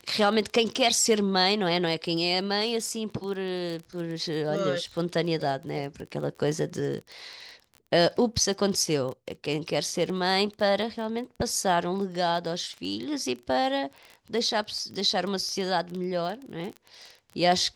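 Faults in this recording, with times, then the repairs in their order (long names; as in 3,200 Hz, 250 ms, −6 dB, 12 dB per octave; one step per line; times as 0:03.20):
surface crackle 22 per second −33 dBFS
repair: click removal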